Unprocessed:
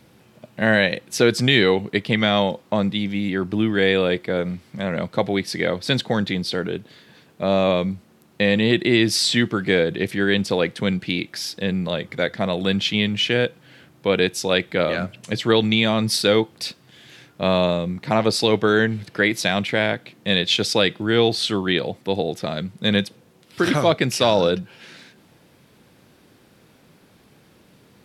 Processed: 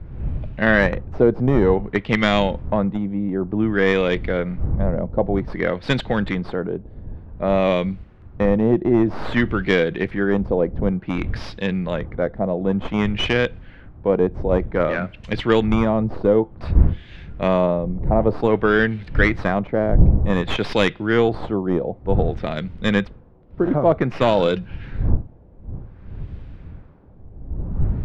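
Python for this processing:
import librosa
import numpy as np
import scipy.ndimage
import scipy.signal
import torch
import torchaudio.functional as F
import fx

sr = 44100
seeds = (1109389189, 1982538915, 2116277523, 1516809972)

y = fx.tracing_dist(x, sr, depth_ms=0.16)
y = fx.dmg_wind(y, sr, seeds[0], corner_hz=85.0, level_db=-26.0)
y = fx.filter_lfo_lowpass(y, sr, shape='sine', hz=0.54, low_hz=670.0, high_hz=2800.0, q=1.1)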